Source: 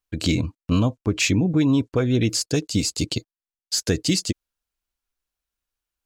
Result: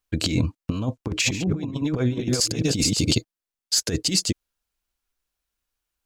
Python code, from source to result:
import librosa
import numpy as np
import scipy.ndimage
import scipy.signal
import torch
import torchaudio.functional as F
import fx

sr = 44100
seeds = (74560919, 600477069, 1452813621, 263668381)

y = fx.reverse_delay(x, sr, ms=219, wet_db=-2.0, at=(0.87, 3.15))
y = fx.over_compress(y, sr, threshold_db=-22.0, ratio=-0.5)